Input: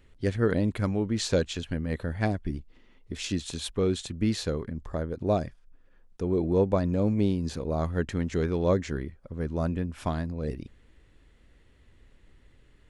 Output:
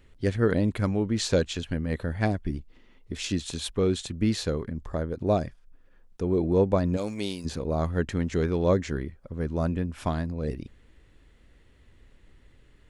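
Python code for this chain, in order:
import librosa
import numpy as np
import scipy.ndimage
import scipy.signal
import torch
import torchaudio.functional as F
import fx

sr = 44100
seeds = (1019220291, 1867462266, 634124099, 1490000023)

y = fx.tilt_eq(x, sr, slope=4.5, at=(6.96, 7.44), fade=0.02)
y = y * librosa.db_to_amplitude(1.5)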